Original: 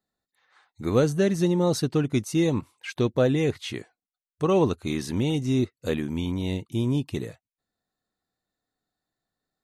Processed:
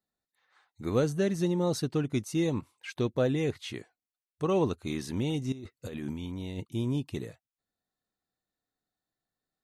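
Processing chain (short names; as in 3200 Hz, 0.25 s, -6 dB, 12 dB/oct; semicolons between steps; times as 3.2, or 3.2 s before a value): 5.52–6.65 negative-ratio compressor -32 dBFS, ratio -1; gain -5.5 dB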